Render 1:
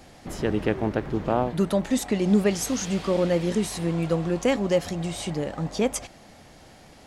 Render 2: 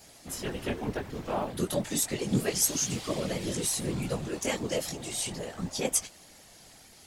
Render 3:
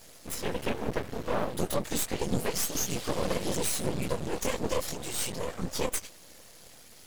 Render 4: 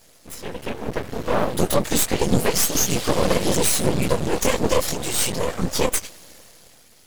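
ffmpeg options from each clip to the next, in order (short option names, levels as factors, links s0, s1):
-af "flanger=delay=16:depth=4.8:speed=0.32,afftfilt=real='hypot(re,im)*cos(2*PI*random(0))':imag='hypot(re,im)*sin(2*PI*random(1))':win_size=512:overlap=0.75,crystalizer=i=4.5:c=0"
-af "equalizer=f=500:t=o:w=0.33:g=7,equalizer=f=800:t=o:w=0.33:g=-4,equalizer=f=12500:t=o:w=0.33:g=4,alimiter=limit=0.106:level=0:latency=1:release=129,aeval=exprs='max(val(0),0)':c=same,volume=1.68"
-af "dynaudnorm=f=200:g=11:m=4.22,volume=0.891"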